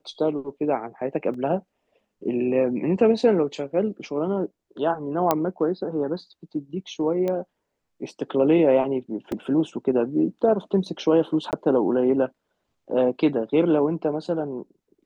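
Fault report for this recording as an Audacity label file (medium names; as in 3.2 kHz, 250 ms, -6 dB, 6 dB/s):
1.340000	1.340000	dropout 3 ms
5.310000	5.310000	pop -6 dBFS
7.280000	7.280000	pop -16 dBFS
9.320000	9.320000	dropout 2.4 ms
11.510000	11.530000	dropout 18 ms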